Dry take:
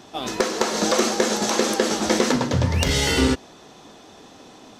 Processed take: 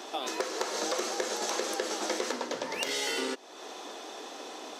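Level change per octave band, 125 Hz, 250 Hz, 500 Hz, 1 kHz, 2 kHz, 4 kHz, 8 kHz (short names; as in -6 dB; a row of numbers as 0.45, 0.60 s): -37.0, -16.5, -10.5, -8.5, -9.0, -9.0, -9.5 dB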